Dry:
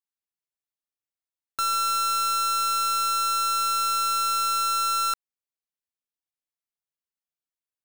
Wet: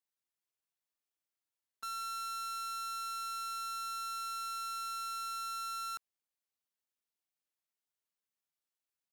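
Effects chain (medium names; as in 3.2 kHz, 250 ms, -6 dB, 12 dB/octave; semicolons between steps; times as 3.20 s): integer overflow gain 38 dB; tempo 0.86×; bass shelf 88 Hz -10 dB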